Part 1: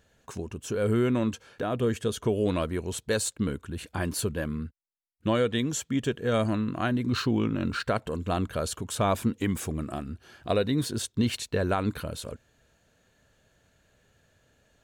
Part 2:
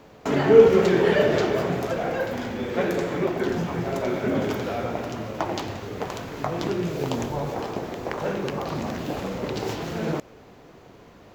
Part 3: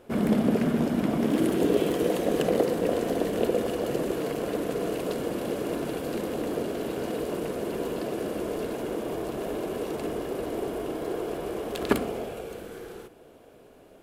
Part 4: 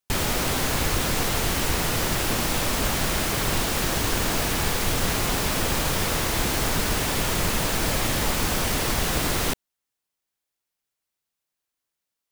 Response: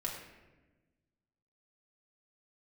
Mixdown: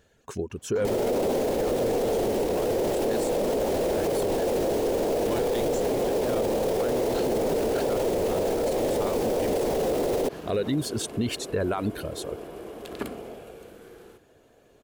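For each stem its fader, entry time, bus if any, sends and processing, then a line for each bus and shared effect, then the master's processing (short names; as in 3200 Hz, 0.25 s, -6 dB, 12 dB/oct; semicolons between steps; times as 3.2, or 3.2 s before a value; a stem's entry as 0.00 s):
+1.5 dB, 0.00 s, no send, reverb removal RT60 0.94 s; bell 410 Hz +6 dB 0.65 oct
-13.0 dB, 0.50 s, no send, dry
-7.0 dB, 1.10 s, no send, dry
-2.5 dB, 0.75 s, no send, graphic EQ 250/500/1000 Hz +10/+12/-6 dB; band shelf 590 Hz +11.5 dB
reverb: off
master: limiter -18 dBFS, peak gain reduction 17.5 dB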